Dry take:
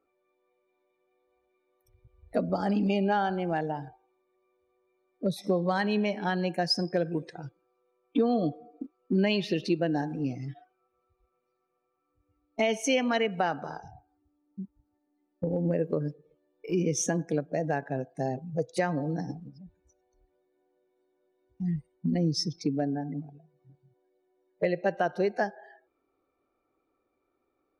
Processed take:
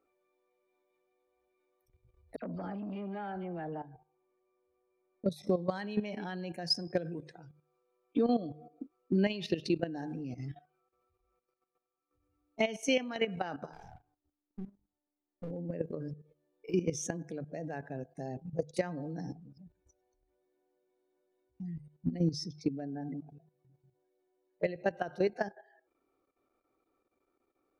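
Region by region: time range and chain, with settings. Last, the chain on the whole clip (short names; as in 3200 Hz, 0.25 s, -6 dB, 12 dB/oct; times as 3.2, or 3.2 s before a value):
2.36–5.24 air absorption 390 m + dispersion lows, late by 65 ms, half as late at 2400 Hz + core saturation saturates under 640 Hz
13.73–15.51 half-wave gain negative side -7 dB + notches 50/100/150/200/250/300/350/400 Hz + sample leveller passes 1
whole clip: dynamic EQ 950 Hz, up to -3 dB, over -41 dBFS, Q 0.81; notches 50/100/150 Hz; level quantiser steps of 13 dB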